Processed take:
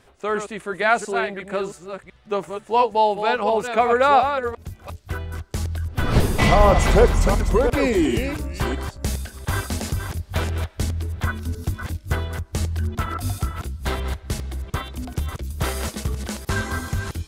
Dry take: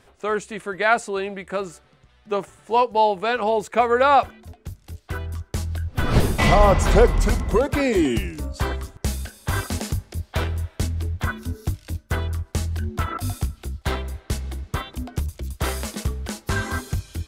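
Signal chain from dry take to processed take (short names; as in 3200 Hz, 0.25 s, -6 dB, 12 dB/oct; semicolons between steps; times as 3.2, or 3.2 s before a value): reverse delay 0.35 s, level -7 dB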